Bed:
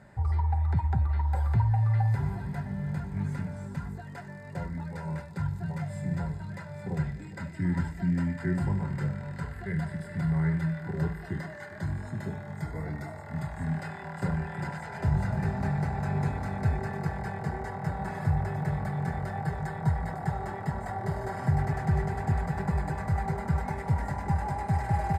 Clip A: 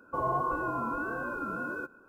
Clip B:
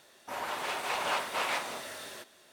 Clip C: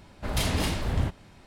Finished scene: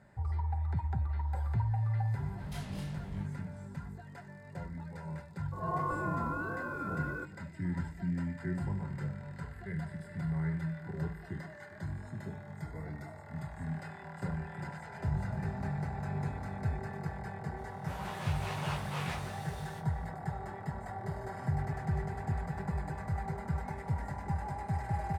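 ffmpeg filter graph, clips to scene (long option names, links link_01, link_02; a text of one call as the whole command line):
ffmpeg -i bed.wav -i cue0.wav -i cue1.wav -i cue2.wav -filter_complex "[0:a]volume=-7dB[link_01];[3:a]flanger=delay=18.5:depth=4.1:speed=2.2[link_02];[1:a]dynaudnorm=framelen=180:gausssize=3:maxgain=14dB[link_03];[2:a]flanger=delay=16.5:depth=2.3:speed=1.7[link_04];[link_02]atrim=end=1.46,asetpts=PTS-STARTPTS,volume=-17dB,afade=type=in:duration=0.004:curve=hsin,afade=type=out:start_time=1.456:duration=0.004:curve=hsin,adelay=2150[link_05];[link_03]atrim=end=2.08,asetpts=PTS-STARTPTS,volume=-17.5dB,afade=type=in:duration=0.004:curve=hsin,afade=type=out:start_time=2.076:duration=0.004:curve=hsin,adelay=5390[link_06];[link_04]atrim=end=2.52,asetpts=PTS-STARTPTS,volume=-6dB,afade=type=in:duration=0.004:curve=hsin,afade=type=out:start_time=2.516:duration=0.004:curve=hsin,adelay=17570[link_07];[link_01][link_05][link_06][link_07]amix=inputs=4:normalize=0" out.wav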